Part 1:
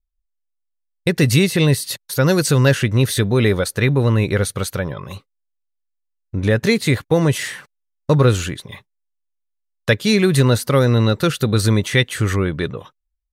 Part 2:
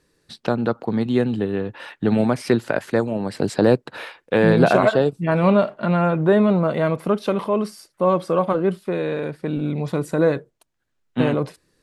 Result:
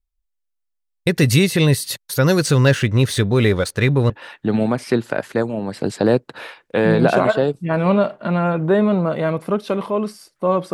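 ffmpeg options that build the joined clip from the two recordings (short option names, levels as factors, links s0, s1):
-filter_complex "[0:a]asettb=1/sr,asplit=3[s0][s1][s2];[s0]atrim=end=2.384[s3];[s1]atrim=start=2.38:end=4.1,asetpts=PTS-STARTPTS,afade=t=in:d=0.004:c=qsin,afade=t=out:st=1.716:d=0.004:c=qsin,adynamicsmooth=sensitivity=7.5:basefreq=5300[s4];[s2]atrim=start=4.096[s5];[s3][s4]acrossfade=d=0.004:c1=hsin:c2=qsin[s6];[s6][s5]acrossfade=d=0.004:c1=qsin:c2=hsin,apad=whole_dur=10.73,atrim=end=10.73,atrim=end=4.102[s7];[1:a]atrim=start=1.678:end=8.31[s8];[s7][s8]acrossfade=d=0.004:c1=hsin:c2=hsin"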